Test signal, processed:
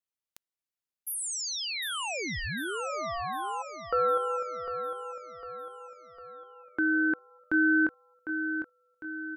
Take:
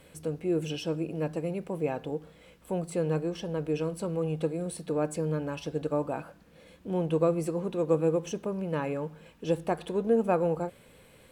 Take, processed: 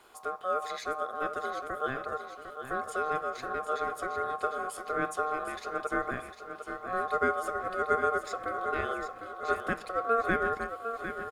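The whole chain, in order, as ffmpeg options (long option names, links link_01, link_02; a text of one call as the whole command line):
ffmpeg -i in.wav -af "aecho=1:1:753|1506|2259|3012|3765|4518:0.355|0.181|0.0923|0.0471|0.024|0.0122,aeval=exprs='val(0)*sin(2*PI*920*n/s)':channel_layout=same" out.wav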